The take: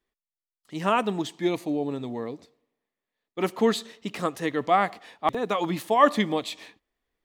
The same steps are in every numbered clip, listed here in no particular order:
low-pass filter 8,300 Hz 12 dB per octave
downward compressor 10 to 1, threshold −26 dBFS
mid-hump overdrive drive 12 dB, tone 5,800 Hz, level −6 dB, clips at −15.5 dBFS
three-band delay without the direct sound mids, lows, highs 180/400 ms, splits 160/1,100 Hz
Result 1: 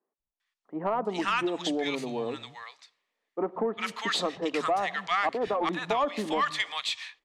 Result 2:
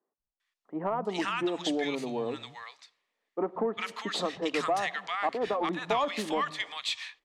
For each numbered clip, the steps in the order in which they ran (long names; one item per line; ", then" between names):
three-band delay without the direct sound, then downward compressor, then mid-hump overdrive, then low-pass filter
downward compressor, then three-band delay without the direct sound, then mid-hump overdrive, then low-pass filter